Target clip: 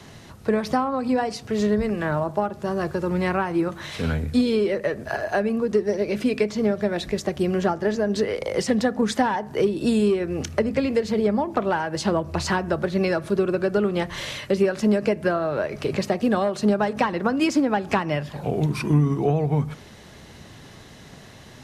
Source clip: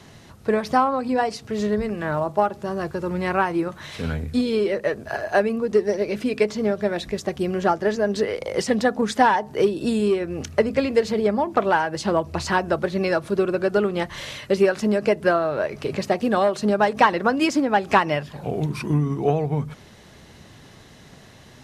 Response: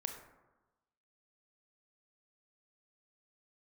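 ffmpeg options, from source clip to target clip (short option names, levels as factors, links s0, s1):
-filter_complex "[0:a]acrossover=split=290[s0][s1];[s1]acompressor=threshold=0.0562:ratio=3[s2];[s0][s2]amix=inputs=2:normalize=0,asplit=2[s3][s4];[1:a]atrim=start_sample=2205,asetrate=57330,aresample=44100[s5];[s4][s5]afir=irnorm=-1:irlink=0,volume=0.266[s6];[s3][s6]amix=inputs=2:normalize=0,volume=1.12"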